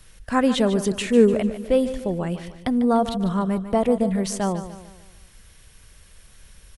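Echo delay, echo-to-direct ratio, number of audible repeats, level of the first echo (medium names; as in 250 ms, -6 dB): 148 ms, -11.0 dB, 4, -12.0 dB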